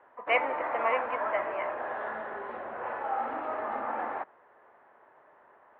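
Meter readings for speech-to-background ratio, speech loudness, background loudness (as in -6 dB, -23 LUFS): 2.5 dB, -31.5 LUFS, -34.0 LUFS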